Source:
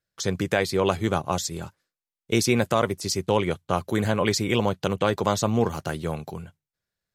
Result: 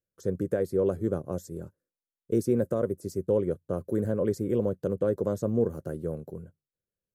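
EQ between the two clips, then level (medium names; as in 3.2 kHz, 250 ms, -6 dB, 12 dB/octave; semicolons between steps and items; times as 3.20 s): FFT filter 140 Hz 0 dB, 530 Hz +5 dB, 800 Hz -15 dB, 1.6 kHz -10 dB, 2.3 kHz -24 dB, 3.8 kHz -24 dB, 11 kHz -5 dB; -5.5 dB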